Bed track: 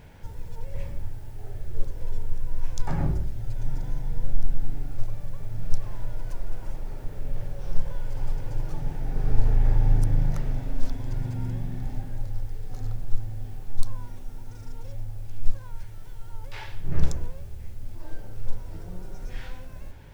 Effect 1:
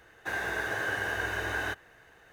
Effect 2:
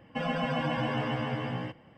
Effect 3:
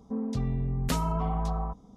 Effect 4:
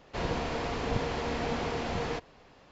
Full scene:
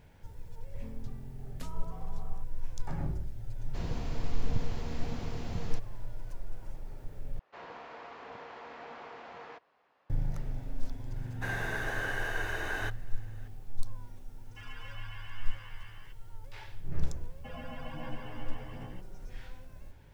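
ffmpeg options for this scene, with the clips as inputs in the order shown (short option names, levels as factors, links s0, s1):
-filter_complex "[4:a]asplit=2[s0][s1];[2:a]asplit=2[s2][s3];[0:a]volume=0.355[s4];[s0]bass=f=250:g=13,treble=f=4000:g=7[s5];[s1]bandpass=f=1200:t=q:w=0.91:csg=0[s6];[s2]highpass=f=1200:w=0.5412,highpass=f=1200:w=1.3066[s7];[s3]aphaser=in_gain=1:out_gain=1:delay=3.6:decay=0.33:speed=1.3:type=sinusoidal[s8];[s4]asplit=2[s9][s10];[s9]atrim=end=7.394[s11];[s6]atrim=end=2.71,asetpts=PTS-STARTPTS,volume=0.355[s12];[s10]atrim=start=10.096[s13];[3:a]atrim=end=1.96,asetpts=PTS-STARTPTS,volume=0.141,afade=t=in:d=0.004:c=hsin,afade=t=out:st=1.956:d=0.004:c=hsin,adelay=710[s14];[s5]atrim=end=2.71,asetpts=PTS-STARTPTS,volume=0.224,afade=t=in:d=0.004:c=hsin,afade=t=out:st=2.706:d=0.004:c=hsin,adelay=3600[s15];[1:a]atrim=end=2.32,asetpts=PTS-STARTPTS,volume=0.668,afade=t=in:d=0.004:c=hsin,afade=t=out:st=2.316:d=0.004:c=hsin,adelay=11160[s16];[s7]atrim=end=1.97,asetpts=PTS-STARTPTS,volume=0.266,afade=t=in:d=0.004:c=hsin,afade=t=out:st=1.966:d=0.004:c=hsin,adelay=14410[s17];[s8]atrim=end=1.97,asetpts=PTS-STARTPTS,volume=0.188,afade=t=in:d=0.004:c=hsin,afade=t=out:st=1.966:d=0.004:c=hsin,adelay=17290[s18];[s11][s12]acrossfade=d=0.004:c1=hsin:c2=hsin[s19];[s19][s13]acrossfade=d=0.004:c1=hsin:c2=hsin[s20];[s20][s14][s15][s16][s17][s18]amix=inputs=6:normalize=0"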